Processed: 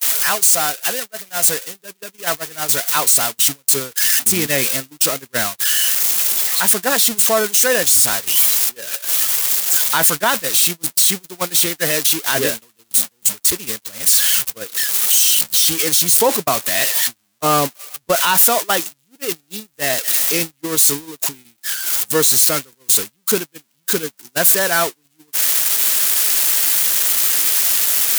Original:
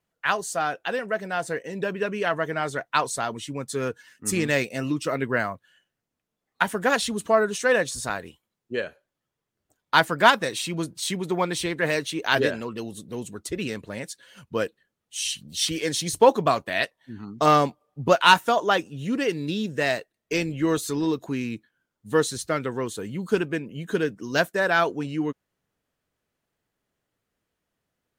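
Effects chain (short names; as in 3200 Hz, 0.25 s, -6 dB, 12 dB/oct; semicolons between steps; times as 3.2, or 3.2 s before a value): switching spikes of -9.5 dBFS; gate -18 dBFS, range -44 dB; limiter -13 dBFS, peak gain reduction 10 dB; gain +7 dB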